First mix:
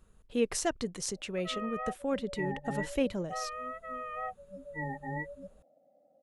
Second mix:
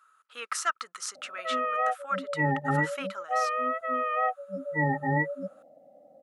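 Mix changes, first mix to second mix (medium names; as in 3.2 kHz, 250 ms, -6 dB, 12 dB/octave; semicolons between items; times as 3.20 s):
speech: add resonant high-pass 1.3 kHz, resonance Q 14; background +11.0 dB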